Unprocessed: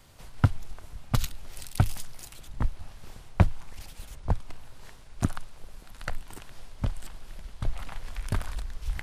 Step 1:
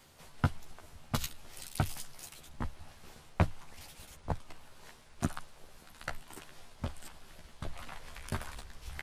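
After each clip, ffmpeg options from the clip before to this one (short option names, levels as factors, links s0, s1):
-filter_complex "[0:a]asplit=2[s0][s1];[s1]adelay=13,volume=0.631[s2];[s0][s2]amix=inputs=2:normalize=0,areverse,acompressor=mode=upward:threshold=0.0141:ratio=2.5,areverse,lowshelf=f=100:g=-11.5,volume=0.631"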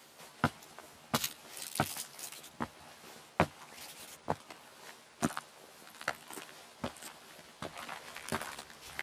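-af "highpass=230,volume=1.58"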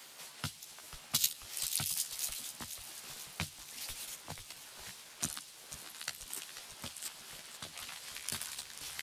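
-filter_complex "[0:a]tiltshelf=f=1200:g=-5.5,acrossover=split=170|3000[s0][s1][s2];[s1]acompressor=threshold=0.00158:ratio=2.5[s3];[s0][s3][s2]amix=inputs=3:normalize=0,asplit=9[s4][s5][s6][s7][s8][s9][s10][s11][s12];[s5]adelay=489,afreqshift=-93,volume=0.266[s13];[s6]adelay=978,afreqshift=-186,volume=0.17[s14];[s7]adelay=1467,afreqshift=-279,volume=0.108[s15];[s8]adelay=1956,afreqshift=-372,volume=0.07[s16];[s9]adelay=2445,afreqshift=-465,volume=0.0447[s17];[s10]adelay=2934,afreqshift=-558,volume=0.0285[s18];[s11]adelay=3423,afreqshift=-651,volume=0.0182[s19];[s12]adelay=3912,afreqshift=-744,volume=0.0117[s20];[s4][s13][s14][s15][s16][s17][s18][s19][s20]amix=inputs=9:normalize=0,volume=1.19"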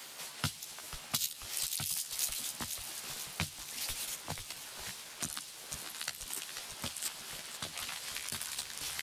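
-af "alimiter=limit=0.0708:level=0:latency=1:release=198,volume=1.78"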